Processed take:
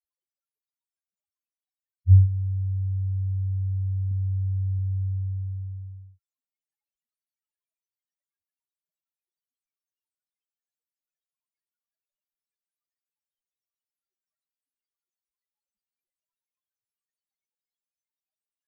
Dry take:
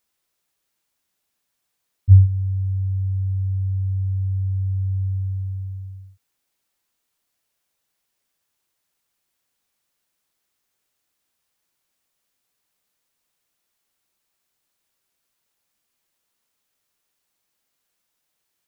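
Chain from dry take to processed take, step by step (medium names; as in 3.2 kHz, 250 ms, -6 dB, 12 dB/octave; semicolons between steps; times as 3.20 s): loudest bins only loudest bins 1; 4.11–4.79 s: small resonant body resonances 210 Hz, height 6 dB, ringing for 25 ms; trim +2 dB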